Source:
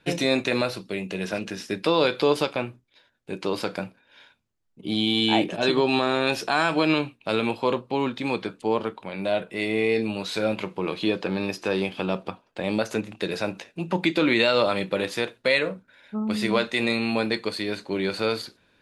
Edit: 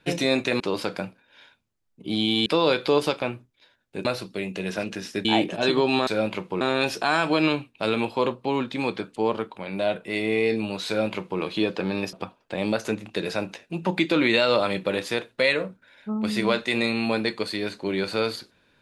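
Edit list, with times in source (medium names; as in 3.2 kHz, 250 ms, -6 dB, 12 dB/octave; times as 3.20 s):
0.60–1.80 s: swap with 3.39–5.25 s
10.33–10.87 s: copy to 6.07 s
11.59–12.19 s: delete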